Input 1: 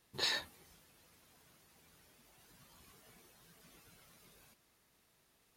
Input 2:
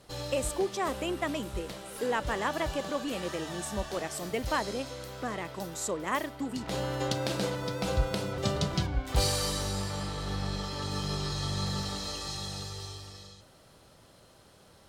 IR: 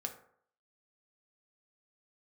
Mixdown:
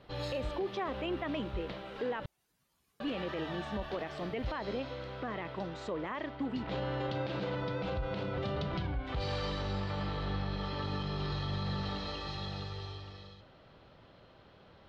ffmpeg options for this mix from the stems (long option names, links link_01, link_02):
-filter_complex "[0:a]volume=-14dB[link_01];[1:a]lowpass=frequency=3600:width=0.5412,lowpass=frequency=3600:width=1.3066,alimiter=limit=-21.5dB:level=0:latency=1:release=142,volume=0dB,asplit=3[link_02][link_03][link_04];[link_02]atrim=end=2.26,asetpts=PTS-STARTPTS,afade=type=out:start_time=2.256:duration=0.004:curve=hsin[link_05];[link_03]atrim=start=2.26:end=3,asetpts=PTS-STARTPTS,volume=0[link_06];[link_04]atrim=start=3,asetpts=PTS-STARTPTS,afade=type=in:duration=0.004:curve=hsin[link_07];[link_05][link_06][link_07]concat=n=3:v=0:a=1[link_08];[link_01][link_08]amix=inputs=2:normalize=0,alimiter=level_in=3dB:limit=-24dB:level=0:latency=1:release=37,volume=-3dB"